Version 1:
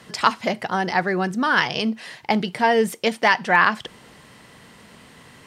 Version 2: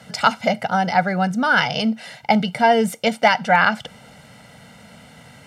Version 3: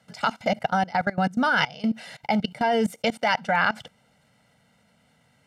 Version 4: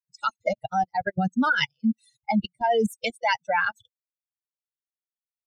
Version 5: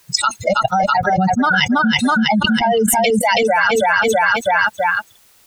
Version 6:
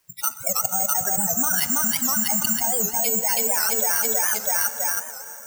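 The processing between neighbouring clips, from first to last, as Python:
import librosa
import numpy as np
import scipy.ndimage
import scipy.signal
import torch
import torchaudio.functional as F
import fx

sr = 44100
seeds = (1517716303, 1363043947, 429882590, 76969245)

y1 = fx.highpass(x, sr, hz=170.0, slope=6)
y1 = fx.low_shelf(y1, sr, hz=440.0, db=7.5)
y1 = y1 + 0.82 * np.pad(y1, (int(1.4 * sr / 1000.0), 0))[:len(y1)]
y1 = F.gain(torch.from_numpy(y1), -1.0).numpy()
y2 = fx.level_steps(y1, sr, step_db=21)
y3 = fx.bin_expand(y2, sr, power=3.0)
y3 = F.gain(torch.from_numpy(y3), 4.5).numpy()
y4 = fx.echo_feedback(y3, sr, ms=326, feedback_pct=32, wet_db=-8.0)
y4 = fx.env_flatten(y4, sr, amount_pct=100)
y4 = F.gain(torch.from_numpy(y4), 4.0).numpy()
y5 = fx.rev_plate(y4, sr, seeds[0], rt60_s=4.2, hf_ratio=0.75, predelay_ms=0, drr_db=9.5)
y5 = (np.kron(scipy.signal.resample_poly(y5, 1, 6), np.eye(6)[0]) * 6)[:len(y5)]
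y5 = fx.record_warp(y5, sr, rpm=78.0, depth_cents=160.0)
y5 = F.gain(torch.from_numpy(y5), -15.0).numpy()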